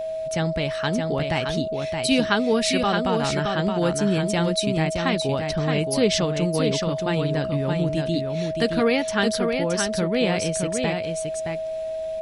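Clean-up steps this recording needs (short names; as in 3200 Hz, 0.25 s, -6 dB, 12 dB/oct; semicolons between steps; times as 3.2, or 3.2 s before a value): notch 640 Hz, Q 30; inverse comb 0.62 s -5 dB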